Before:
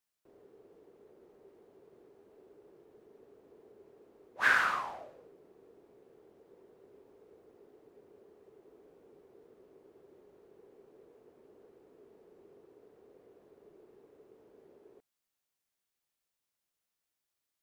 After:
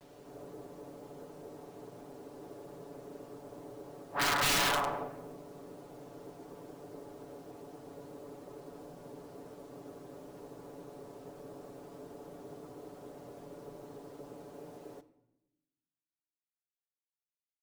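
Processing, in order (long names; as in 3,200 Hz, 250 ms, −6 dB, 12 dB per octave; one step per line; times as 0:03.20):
ceiling on every frequency bin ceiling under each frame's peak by 13 dB
low-pass filter 1,200 Hz 12 dB per octave
backwards echo 244 ms −4.5 dB
wrap-around overflow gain 29.5 dB
bit reduction 12 bits
soft clipping −35 dBFS, distortion −13 dB
comb filter 7 ms, depth 75%
on a send at −13.5 dB: convolution reverb RT60 0.95 s, pre-delay 4 ms
on the sum: level +8 dB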